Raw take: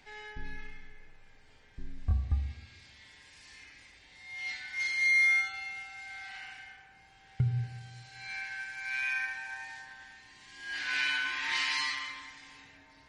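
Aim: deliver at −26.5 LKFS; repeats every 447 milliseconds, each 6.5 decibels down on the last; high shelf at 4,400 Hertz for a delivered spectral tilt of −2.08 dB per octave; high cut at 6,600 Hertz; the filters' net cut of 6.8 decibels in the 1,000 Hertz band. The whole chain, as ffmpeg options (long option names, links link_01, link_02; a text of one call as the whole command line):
ffmpeg -i in.wav -af "lowpass=6600,equalizer=frequency=1000:width_type=o:gain=-8,highshelf=frequency=4400:gain=-4.5,aecho=1:1:447|894|1341|1788|2235|2682:0.473|0.222|0.105|0.0491|0.0231|0.0109,volume=7dB" out.wav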